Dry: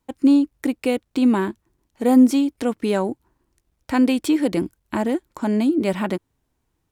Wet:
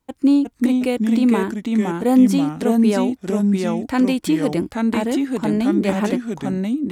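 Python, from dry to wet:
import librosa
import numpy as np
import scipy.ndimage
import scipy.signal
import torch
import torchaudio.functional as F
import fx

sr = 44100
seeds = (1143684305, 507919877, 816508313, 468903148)

y = fx.echo_pitch(x, sr, ms=350, semitones=-2, count=2, db_per_echo=-3.0)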